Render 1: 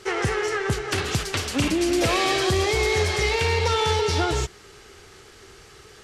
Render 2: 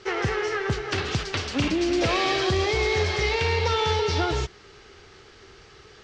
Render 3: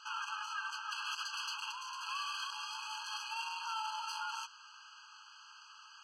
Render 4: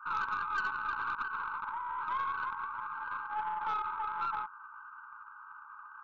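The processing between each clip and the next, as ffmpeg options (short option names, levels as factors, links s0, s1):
-af "lowpass=f=5800:w=0.5412,lowpass=f=5800:w=1.3066,volume=0.841"
-filter_complex "[0:a]acrossover=split=330[s0][s1];[s1]alimiter=limit=0.0794:level=0:latency=1:release=58[s2];[s0][s2]amix=inputs=2:normalize=0,asoftclip=type=tanh:threshold=0.0398,afftfilt=real='re*eq(mod(floor(b*sr/1024/830),2),1)':imag='im*eq(mod(floor(b*sr/1024/830),2),1)':win_size=1024:overlap=0.75,volume=0.891"
-af "afreqshift=-58,afftfilt=real='re*between(b*sr/4096,830,2300)':imag='im*between(b*sr/4096,830,2300)':win_size=4096:overlap=0.75,aeval=exprs='0.0335*(cos(1*acos(clip(val(0)/0.0335,-1,1)))-cos(1*PI/2))+0.00237*(cos(4*acos(clip(val(0)/0.0335,-1,1)))-cos(4*PI/2))+0.00237*(cos(5*acos(clip(val(0)/0.0335,-1,1)))-cos(5*PI/2))':c=same,volume=2.11"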